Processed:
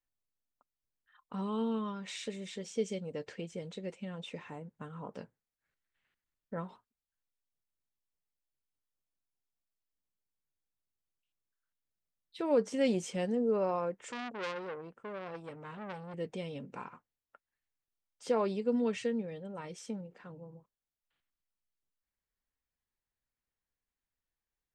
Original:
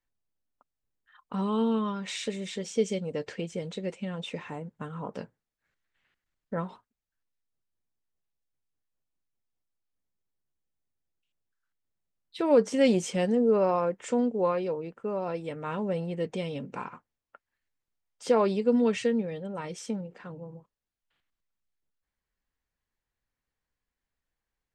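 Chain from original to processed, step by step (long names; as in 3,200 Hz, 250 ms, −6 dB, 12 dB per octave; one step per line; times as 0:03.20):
0:13.95–0:16.14: saturating transformer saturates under 2,300 Hz
level −7 dB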